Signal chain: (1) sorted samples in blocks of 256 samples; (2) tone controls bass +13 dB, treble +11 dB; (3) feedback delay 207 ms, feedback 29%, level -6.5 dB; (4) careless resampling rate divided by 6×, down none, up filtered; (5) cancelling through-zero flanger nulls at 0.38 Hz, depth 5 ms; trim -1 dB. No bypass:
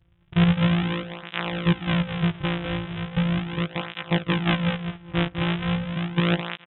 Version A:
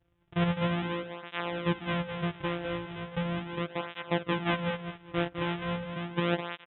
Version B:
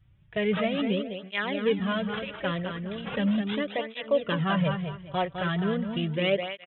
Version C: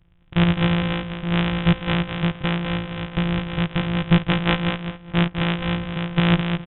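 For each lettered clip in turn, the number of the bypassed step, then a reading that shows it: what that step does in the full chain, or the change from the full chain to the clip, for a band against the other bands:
2, 500 Hz band +6.5 dB; 1, crest factor change -3.0 dB; 5, crest factor change +2.0 dB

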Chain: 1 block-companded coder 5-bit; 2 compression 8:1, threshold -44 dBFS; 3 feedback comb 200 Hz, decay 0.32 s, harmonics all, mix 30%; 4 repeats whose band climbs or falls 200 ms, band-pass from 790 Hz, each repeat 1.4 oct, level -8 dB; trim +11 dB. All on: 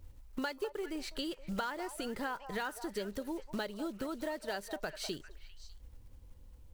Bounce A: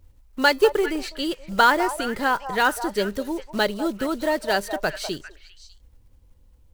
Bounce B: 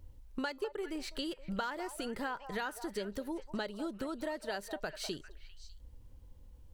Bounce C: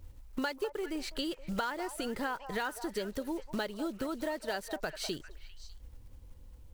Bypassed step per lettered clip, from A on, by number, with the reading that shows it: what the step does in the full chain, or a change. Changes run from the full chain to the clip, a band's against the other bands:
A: 2, mean gain reduction 11.5 dB; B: 1, distortion -23 dB; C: 3, loudness change +2.5 LU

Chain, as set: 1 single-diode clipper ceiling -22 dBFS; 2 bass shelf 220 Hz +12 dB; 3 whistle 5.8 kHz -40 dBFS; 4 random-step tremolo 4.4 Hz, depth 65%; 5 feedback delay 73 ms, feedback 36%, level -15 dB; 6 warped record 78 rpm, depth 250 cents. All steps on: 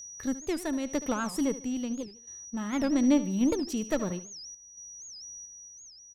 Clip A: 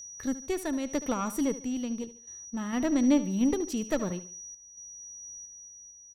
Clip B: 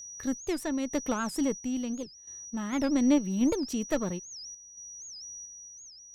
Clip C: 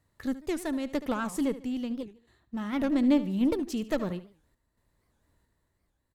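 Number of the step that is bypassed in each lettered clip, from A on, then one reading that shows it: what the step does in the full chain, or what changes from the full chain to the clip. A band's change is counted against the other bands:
6, 4 kHz band -2.5 dB; 5, momentary loudness spread change -1 LU; 3, 4 kHz band -2.5 dB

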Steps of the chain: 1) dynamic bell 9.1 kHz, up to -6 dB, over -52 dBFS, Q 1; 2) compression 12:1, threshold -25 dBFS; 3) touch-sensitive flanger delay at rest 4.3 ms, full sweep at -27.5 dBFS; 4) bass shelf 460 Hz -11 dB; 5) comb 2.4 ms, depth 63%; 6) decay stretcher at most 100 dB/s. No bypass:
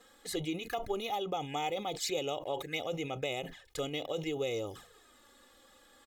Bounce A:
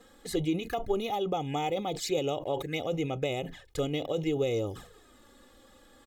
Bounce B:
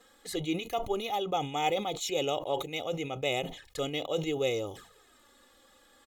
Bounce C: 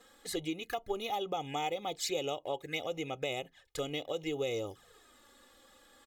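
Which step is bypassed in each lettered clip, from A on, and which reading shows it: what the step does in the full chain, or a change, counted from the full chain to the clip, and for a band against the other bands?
4, 125 Hz band +7.0 dB; 2, mean gain reduction 2.0 dB; 6, 125 Hz band -2.5 dB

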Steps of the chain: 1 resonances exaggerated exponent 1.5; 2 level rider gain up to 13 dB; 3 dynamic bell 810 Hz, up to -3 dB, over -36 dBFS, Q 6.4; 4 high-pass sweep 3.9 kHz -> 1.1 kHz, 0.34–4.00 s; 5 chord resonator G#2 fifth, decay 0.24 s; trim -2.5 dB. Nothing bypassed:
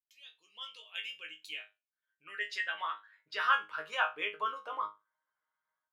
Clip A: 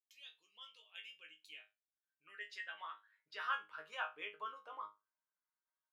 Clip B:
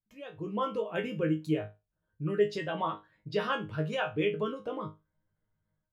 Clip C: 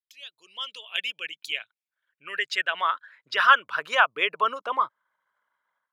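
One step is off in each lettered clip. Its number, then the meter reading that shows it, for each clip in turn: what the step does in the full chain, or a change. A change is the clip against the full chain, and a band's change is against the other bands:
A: 2, loudness change -11.0 LU; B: 4, 500 Hz band +20.0 dB; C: 5, loudness change +10.5 LU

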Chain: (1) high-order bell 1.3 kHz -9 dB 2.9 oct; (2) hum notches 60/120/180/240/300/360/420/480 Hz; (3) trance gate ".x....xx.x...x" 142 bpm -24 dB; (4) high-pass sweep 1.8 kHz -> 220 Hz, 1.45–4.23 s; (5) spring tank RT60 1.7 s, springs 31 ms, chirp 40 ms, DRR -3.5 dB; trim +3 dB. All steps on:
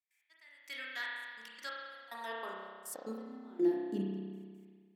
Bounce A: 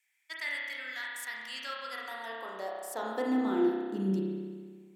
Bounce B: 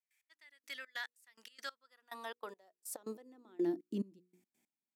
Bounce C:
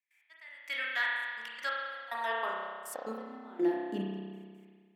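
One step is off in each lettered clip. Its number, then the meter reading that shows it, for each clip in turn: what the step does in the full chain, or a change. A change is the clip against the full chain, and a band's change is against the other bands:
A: 3, 8 kHz band -2.0 dB; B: 5, 8 kHz band +4.5 dB; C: 1, 2 kHz band +7.0 dB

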